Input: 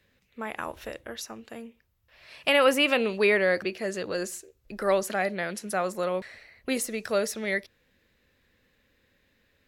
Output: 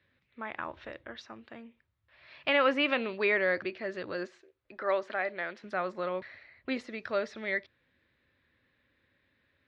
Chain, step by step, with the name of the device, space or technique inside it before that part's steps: guitar cabinet (cabinet simulation 81–3700 Hz, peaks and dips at 200 Hz -8 dB, 460 Hz -8 dB, 750 Hz -4 dB, 2.8 kHz -5 dB); 4.27–5.64 s: tone controls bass -12 dB, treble -5 dB; trim -2 dB

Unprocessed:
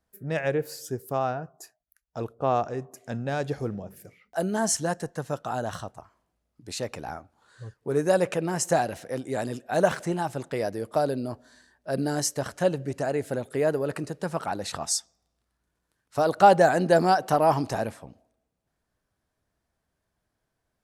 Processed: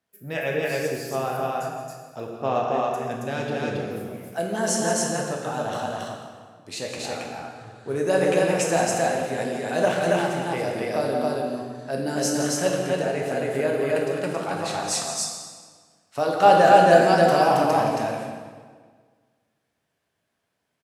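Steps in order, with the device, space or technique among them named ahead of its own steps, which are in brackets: stadium PA (high-pass 130 Hz; peaking EQ 2.7 kHz +6.5 dB 1 oct; loudspeakers at several distances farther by 59 m -11 dB, 94 m -1 dB; reverberation RT60 1.7 s, pre-delay 7 ms, DRR 0.5 dB); trim -2.5 dB

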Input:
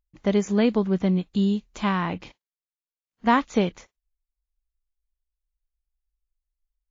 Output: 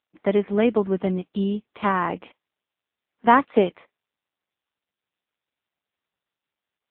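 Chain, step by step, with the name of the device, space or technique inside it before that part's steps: 1.69–3.64 s: dynamic bell 440 Hz, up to +3 dB, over -30 dBFS, Q 0.87; telephone (band-pass 290–3200 Hz; trim +4.5 dB; AMR-NB 6.7 kbps 8 kHz)

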